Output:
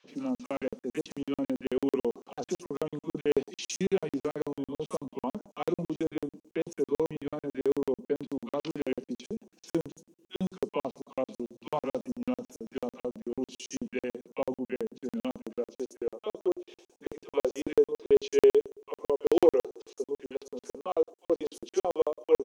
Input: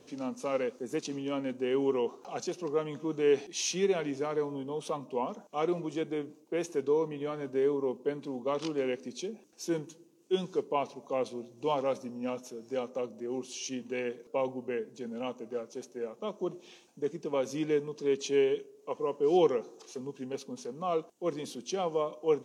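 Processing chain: three bands offset in time mids, lows, highs 40/80 ms, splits 1100/5200 Hz; high-pass sweep 190 Hz -> 390 Hz, 14.83–16.42; crackling interface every 0.11 s, samples 2048, zero, from 0.35

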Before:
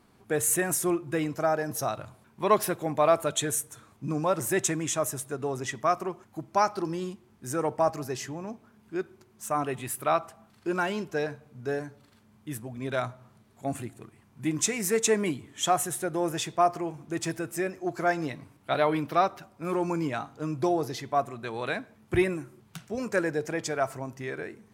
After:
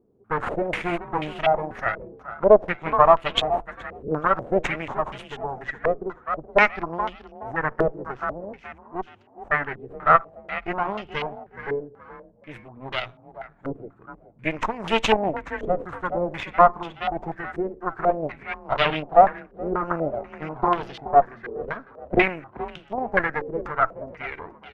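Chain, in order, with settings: added harmonics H 4 -12 dB, 7 -21 dB, 8 -23 dB, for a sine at -8.5 dBFS; frequency-shifting echo 0.423 s, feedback 37%, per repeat +31 Hz, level -13 dB; stepped low-pass 4.1 Hz 450–3000 Hz; gain +2.5 dB

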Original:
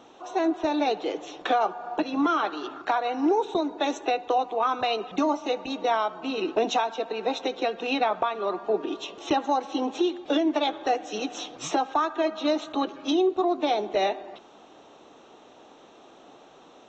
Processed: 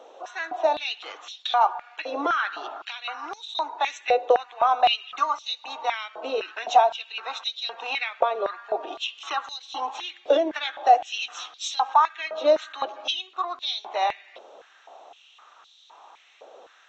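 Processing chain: stepped high-pass 3.9 Hz 530–3800 Hz; gain -1.5 dB

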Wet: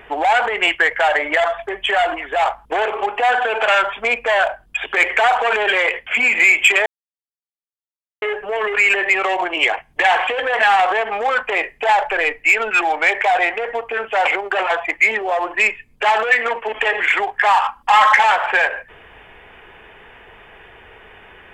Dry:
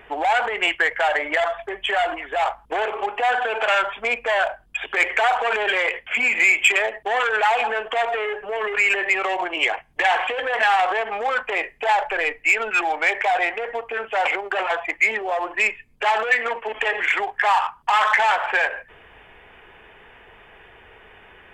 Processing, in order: 17.64–18.24 comb 3.7 ms, depth 76%; soft clip -4 dBFS, distortion -29 dB; 6.86–8.22 mute; gain +4.5 dB

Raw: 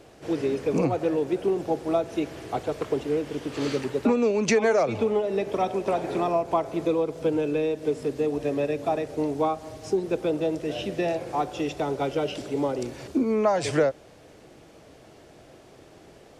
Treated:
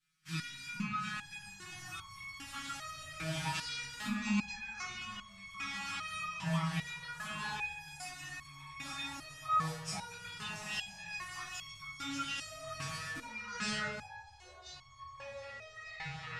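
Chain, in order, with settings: gate -38 dBFS, range -26 dB; Chebyshev band-stop 200–1300 Hz, order 3; treble ducked by the level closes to 1300 Hz, closed at -22 dBFS; tilt +2 dB/oct; limiter -27.5 dBFS, peak gain reduction 11 dB; reverb RT60 0.50 s, pre-delay 6 ms, DRR -1.5 dB; echoes that change speed 0.69 s, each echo -6 st, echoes 3, each echo -6 dB; stepped resonator 2.5 Hz 160–1100 Hz; gain +10.5 dB

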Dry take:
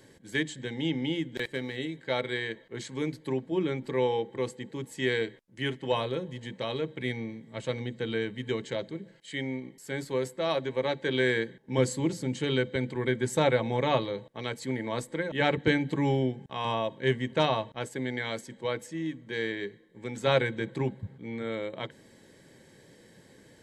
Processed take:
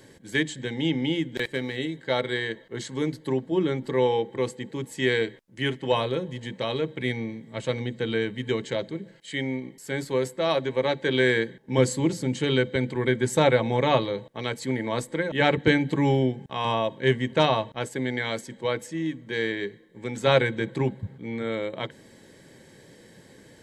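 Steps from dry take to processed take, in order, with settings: 1.86–4.06 notch 2400 Hz, Q 7.1; gain +4.5 dB

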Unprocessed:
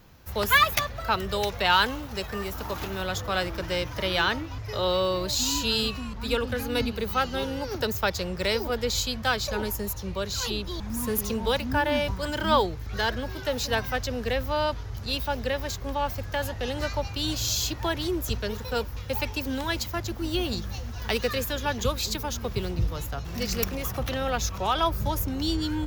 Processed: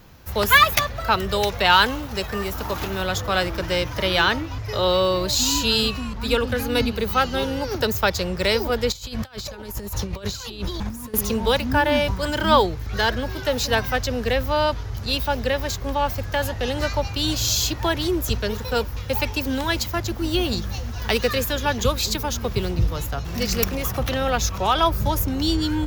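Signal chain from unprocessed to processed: 8.92–11.14 negative-ratio compressor -35 dBFS, ratio -0.5; gain +5.5 dB

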